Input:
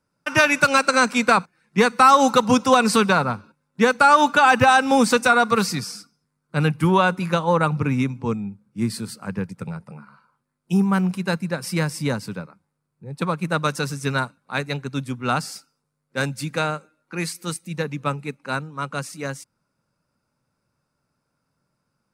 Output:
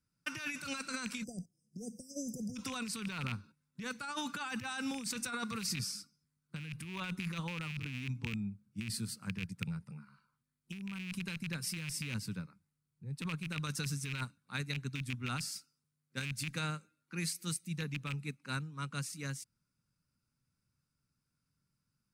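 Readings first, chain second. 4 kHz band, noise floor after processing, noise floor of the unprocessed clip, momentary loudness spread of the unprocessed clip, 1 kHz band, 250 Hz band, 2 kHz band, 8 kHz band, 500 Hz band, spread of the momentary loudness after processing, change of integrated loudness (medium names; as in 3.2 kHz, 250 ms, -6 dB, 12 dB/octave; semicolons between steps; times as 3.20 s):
-13.5 dB, -85 dBFS, -76 dBFS, 16 LU, -27.5 dB, -18.0 dB, -19.5 dB, -11.0 dB, -28.5 dB, 9 LU, -19.5 dB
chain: rattle on loud lows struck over -24 dBFS, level -11 dBFS; amplifier tone stack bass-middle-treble 6-0-2; compressor with a negative ratio -43 dBFS, ratio -1; spectral selection erased 1.24–2.56 s, 750–4800 Hz; trim +4.5 dB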